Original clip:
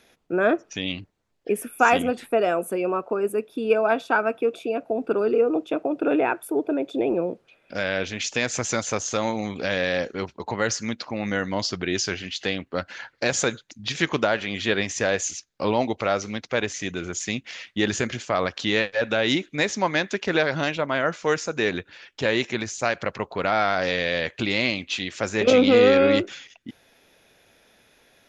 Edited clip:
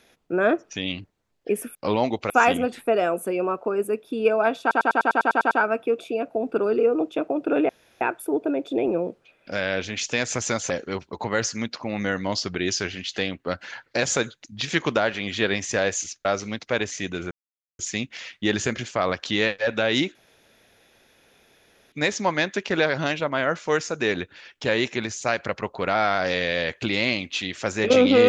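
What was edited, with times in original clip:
0:04.06: stutter 0.10 s, 10 plays
0:06.24: splice in room tone 0.32 s
0:08.93–0:09.97: remove
0:15.52–0:16.07: move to 0:01.75
0:17.13: splice in silence 0.48 s
0:19.49: splice in room tone 1.77 s

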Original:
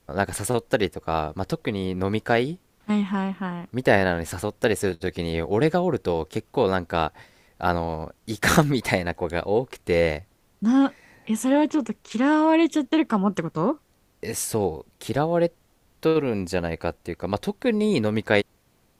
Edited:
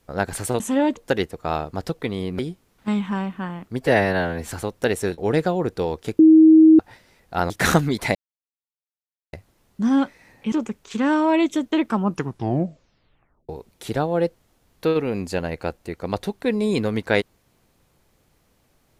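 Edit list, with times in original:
0:02.02–0:02.41: remove
0:03.83–0:04.27: time-stretch 1.5×
0:04.98–0:05.46: remove
0:06.47–0:07.07: beep over 317 Hz −7 dBFS
0:07.78–0:08.33: remove
0:08.98–0:10.16: silence
0:11.35–0:11.72: move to 0:00.60
0:13.23: tape stop 1.46 s

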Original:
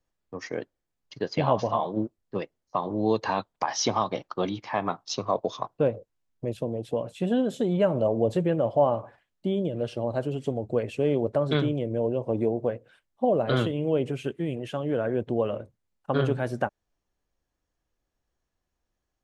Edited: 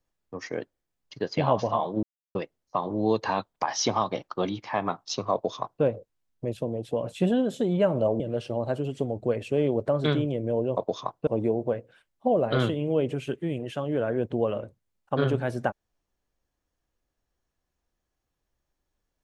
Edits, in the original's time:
0:02.03–0:02.35: silence
0:05.33–0:05.83: duplicate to 0:12.24
0:07.03–0:07.31: clip gain +4 dB
0:08.20–0:09.67: remove

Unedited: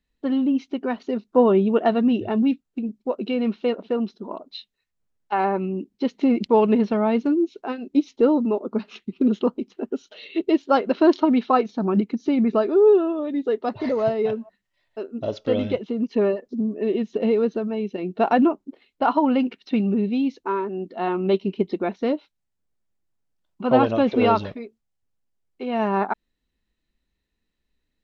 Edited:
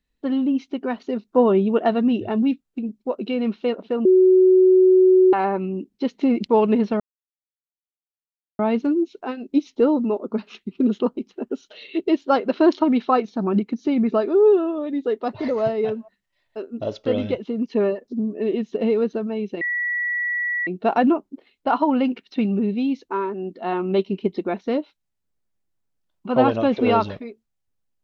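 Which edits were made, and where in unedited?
0:04.05–0:05.33: beep over 372 Hz −10 dBFS
0:07.00: splice in silence 1.59 s
0:18.02: insert tone 1,940 Hz −21 dBFS 1.06 s

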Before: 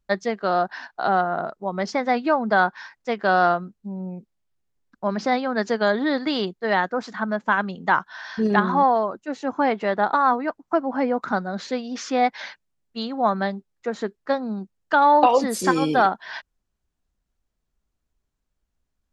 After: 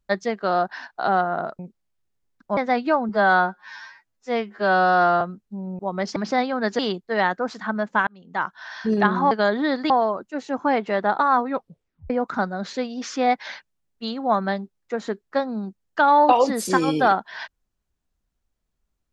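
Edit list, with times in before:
0:01.59–0:01.96: swap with 0:04.12–0:05.10
0:02.48–0:03.54: time-stretch 2×
0:05.73–0:06.32: move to 0:08.84
0:07.60–0:08.24: fade in
0:10.40: tape stop 0.64 s

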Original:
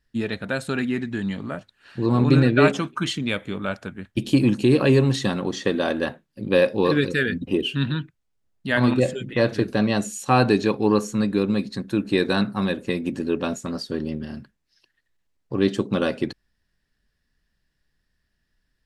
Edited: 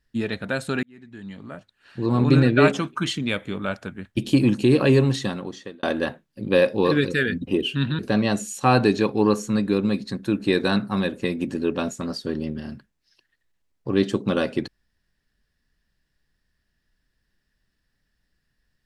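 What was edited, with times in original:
0:00.83–0:02.34: fade in
0:05.02–0:05.83: fade out
0:07.99–0:09.64: remove

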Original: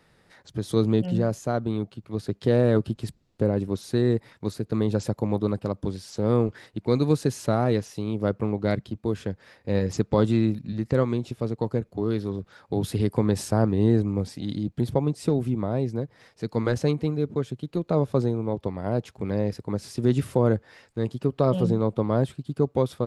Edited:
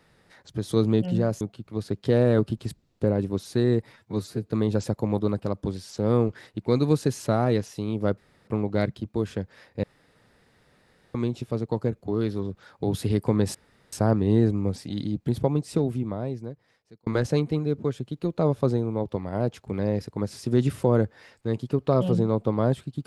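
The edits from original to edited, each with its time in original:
0:01.41–0:01.79: remove
0:04.31–0:04.68: time-stretch 1.5×
0:08.37: splice in room tone 0.30 s
0:09.73–0:11.04: fill with room tone
0:13.44: splice in room tone 0.38 s
0:15.18–0:16.58: fade out

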